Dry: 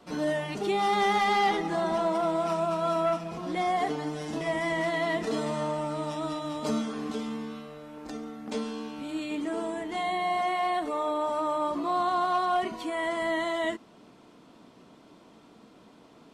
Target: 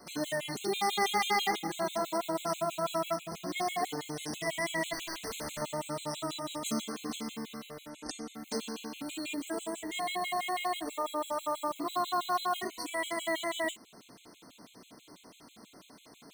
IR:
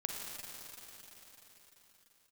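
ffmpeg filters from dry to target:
-filter_complex "[0:a]asplit=2[link_01][link_02];[link_02]acompressor=threshold=-39dB:ratio=8,volume=-2dB[link_03];[link_01][link_03]amix=inputs=2:normalize=0,acrusher=bits=9:mode=log:mix=0:aa=0.000001,crystalizer=i=4:c=0,asettb=1/sr,asplit=3[link_04][link_05][link_06];[link_04]atrim=end=4.934[link_07];[link_05]atrim=start=4.93:end=5.62,asetpts=PTS-STARTPTS,afade=type=in:duration=0.004:curve=qsin,afade=type=out:start_time=0.686:duration=0.004:curve=qsin,aeval=exprs='0.0473*(abs(mod(val(0)/0.0473+3,4)-2)-1)':channel_layout=same[link_08];[link_06]atrim=start=5.616[link_09];[link_07][link_08]acrossfade=duration=0.004:curve1=hsin:curve2=qsin[link_10];[link_10][link_09]acrossfade=duration=0.004:curve1=qsin:curve2=hsin,asplit=3[link_11][link_12][link_13];[link_11]afade=type=out:start_time=7.89:duration=0.02[link_14];[link_12]lowpass=frequency=7900:width_type=q:width=1.7,afade=type=in:start_time=7.89:duration=0.02,afade=type=out:start_time=8.33:duration=0.02[link_15];[link_13]afade=type=in:start_time=8.33:duration=0.02[link_16];[link_14][link_15][link_16]amix=inputs=3:normalize=0,afftfilt=real='re*gt(sin(2*PI*6.1*pts/sr)*(1-2*mod(floor(b*sr/1024/2100),2)),0)':imag='im*gt(sin(2*PI*6.1*pts/sr)*(1-2*mod(floor(b*sr/1024/2100),2)),0)':win_size=1024:overlap=0.75,volume=-5dB"

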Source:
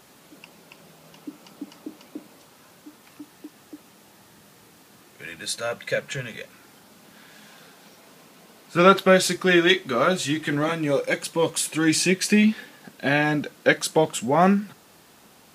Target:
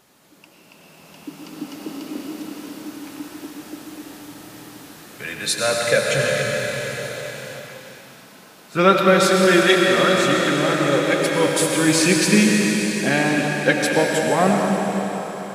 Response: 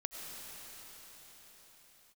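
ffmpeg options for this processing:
-filter_complex "[1:a]atrim=start_sample=2205[link_01];[0:a][link_01]afir=irnorm=-1:irlink=0,dynaudnorm=framelen=250:gausssize=11:maxgain=11.5dB,volume=-1dB"

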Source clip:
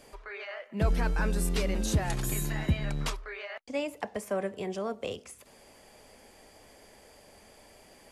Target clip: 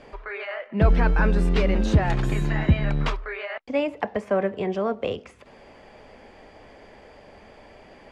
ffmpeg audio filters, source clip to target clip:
ffmpeg -i in.wav -af "lowpass=2700,volume=8.5dB" out.wav

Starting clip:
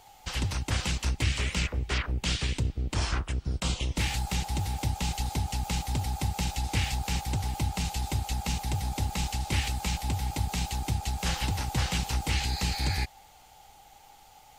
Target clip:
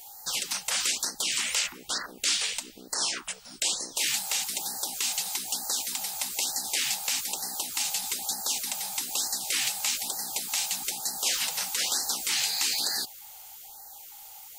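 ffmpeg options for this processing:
ffmpeg -i in.wav -filter_complex "[0:a]afftfilt=real='re*lt(hypot(re,im),0.0891)':imag='im*lt(hypot(re,im),0.0891)':win_size=1024:overlap=0.75,aemphasis=mode=production:type=riaa,acrossover=split=9200[link_01][link_02];[link_02]acompressor=threshold=-35dB:ratio=4:attack=1:release=60[link_03];[link_01][link_03]amix=inputs=2:normalize=0,lowshelf=frequency=79:gain=8,afftfilt=real='re*(1-between(b*sr/1024,280*pow(2900/280,0.5+0.5*sin(2*PI*1.1*pts/sr))/1.41,280*pow(2900/280,0.5+0.5*sin(2*PI*1.1*pts/sr))*1.41))':imag='im*(1-between(b*sr/1024,280*pow(2900/280,0.5+0.5*sin(2*PI*1.1*pts/sr))/1.41,280*pow(2900/280,0.5+0.5*sin(2*PI*1.1*pts/sr))*1.41))':win_size=1024:overlap=0.75" out.wav

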